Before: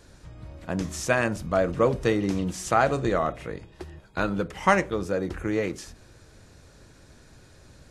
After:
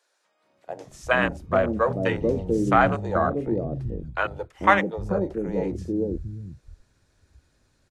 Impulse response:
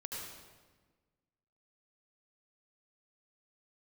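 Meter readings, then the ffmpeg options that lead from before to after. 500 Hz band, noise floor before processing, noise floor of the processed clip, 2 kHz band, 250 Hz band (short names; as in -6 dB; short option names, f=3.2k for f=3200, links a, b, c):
+1.5 dB, -54 dBFS, -70 dBFS, +3.0 dB, +2.0 dB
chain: -filter_complex "[0:a]afwtdn=0.0282,acrossover=split=160|490[a][b][c];[b]adelay=440[d];[a]adelay=800[e];[e][d][c]amix=inputs=3:normalize=0,volume=4dB"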